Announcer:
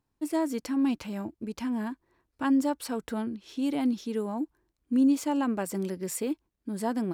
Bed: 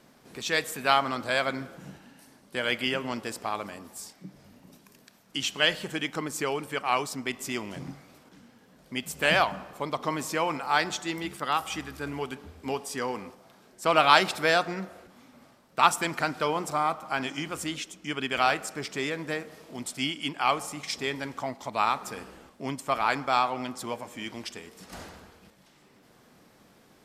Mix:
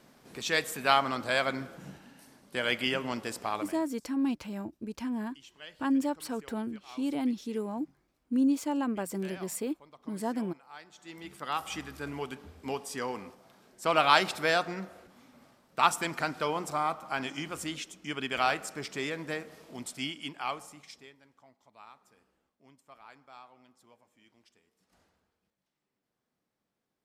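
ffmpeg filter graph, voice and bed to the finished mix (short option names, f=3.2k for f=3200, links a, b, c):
-filter_complex "[0:a]adelay=3400,volume=-3dB[a];[1:a]volume=19dB,afade=t=out:st=3.56:d=0.34:silence=0.0749894,afade=t=in:st=10.93:d=0.82:silence=0.0944061,afade=t=out:st=19.7:d=1.45:silence=0.0668344[b];[a][b]amix=inputs=2:normalize=0"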